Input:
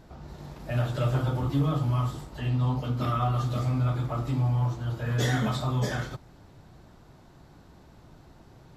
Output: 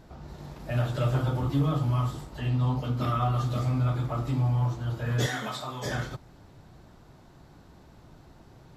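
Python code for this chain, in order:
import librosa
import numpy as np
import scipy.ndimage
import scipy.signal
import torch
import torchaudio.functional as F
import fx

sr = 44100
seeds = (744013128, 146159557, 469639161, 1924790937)

y = fx.highpass(x, sr, hz=680.0, slope=6, at=(5.26, 5.86))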